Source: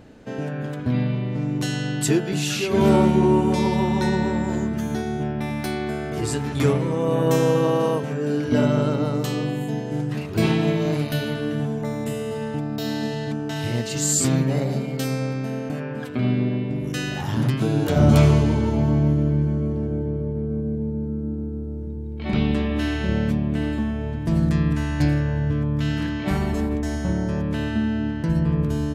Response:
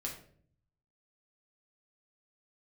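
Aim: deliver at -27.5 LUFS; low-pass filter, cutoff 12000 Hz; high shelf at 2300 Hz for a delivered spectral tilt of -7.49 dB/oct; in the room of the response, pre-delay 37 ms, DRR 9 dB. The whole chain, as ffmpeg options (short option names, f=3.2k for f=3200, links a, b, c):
-filter_complex "[0:a]lowpass=12k,highshelf=f=2.3k:g=-7.5,asplit=2[a][b];[1:a]atrim=start_sample=2205,adelay=37[c];[b][c]afir=irnorm=-1:irlink=0,volume=-9dB[d];[a][d]amix=inputs=2:normalize=0,volume=-4.5dB"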